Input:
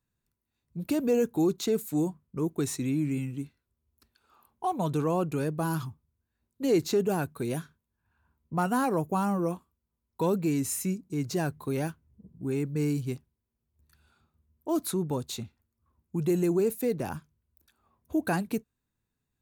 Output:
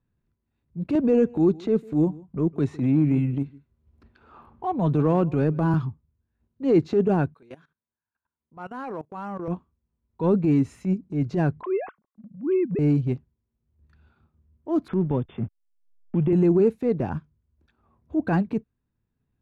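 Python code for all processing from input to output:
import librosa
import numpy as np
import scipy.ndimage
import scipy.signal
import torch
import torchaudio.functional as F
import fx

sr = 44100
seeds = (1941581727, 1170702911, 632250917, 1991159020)

y = fx.chain(x, sr, fx.echo_single(ms=153, db=-22.0),
    fx.band_squash(depth_pct=40), at=(0.95, 5.74))
y = fx.chain(y, sr, fx.highpass(hz=890.0, slope=6),
    fx.level_steps(step_db=19), at=(7.34, 9.48))
y = fx.chain(y, sr, fx.sine_speech(),
    fx.peak_eq(hz=1100.0, db=7.0, octaves=0.24), at=(11.61, 12.79))
y = fx.chain(y, sr, fx.backlash(play_db=-46.0),
    fx.brickwall_lowpass(high_hz=3600.0),
    fx.band_squash(depth_pct=100), at=(14.88, 16.33))
y = scipy.signal.sosfilt(scipy.signal.butter(2, 2600.0, 'lowpass', fs=sr, output='sos'), y)
y = fx.low_shelf(y, sr, hz=490.0, db=8.0)
y = fx.transient(y, sr, attack_db=-8, sustain_db=-4)
y = F.gain(torch.from_numpy(y), 2.5).numpy()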